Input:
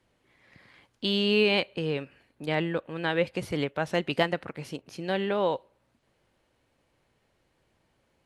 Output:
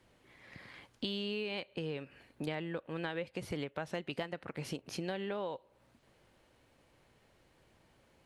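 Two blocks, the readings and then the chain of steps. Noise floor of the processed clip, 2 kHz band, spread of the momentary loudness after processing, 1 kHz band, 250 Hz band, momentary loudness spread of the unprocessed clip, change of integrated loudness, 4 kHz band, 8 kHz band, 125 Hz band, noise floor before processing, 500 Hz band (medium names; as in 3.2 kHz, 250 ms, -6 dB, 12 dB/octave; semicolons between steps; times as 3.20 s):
-69 dBFS, -12.0 dB, 15 LU, -12.0 dB, -10.0 dB, 14 LU, -11.5 dB, -12.0 dB, -2.5 dB, -9.0 dB, -72 dBFS, -12.0 dB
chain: compression 8:1, threshold -39 dBFS, peak gain reduction 20 dB; trim +3.5 dB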